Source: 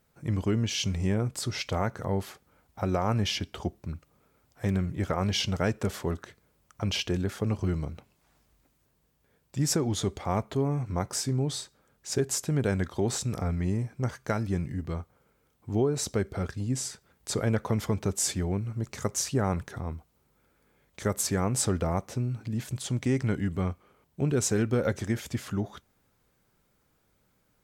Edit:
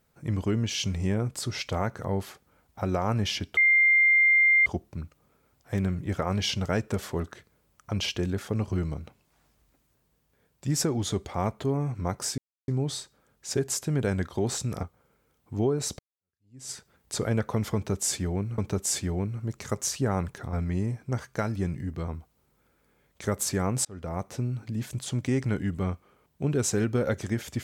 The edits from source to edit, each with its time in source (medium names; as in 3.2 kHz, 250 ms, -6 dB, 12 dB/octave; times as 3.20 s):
3.57 s: add tone 2.1 kHz -16.5 dBFS 1.09 s
11.29 s: insert silence 0.30 s
13.44–14.99 s: move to 19.86 s
16.15–16.87 s: fade in exponential
17.91–18.74 s: loop, 2 plays
21.63–22.11 s: fade in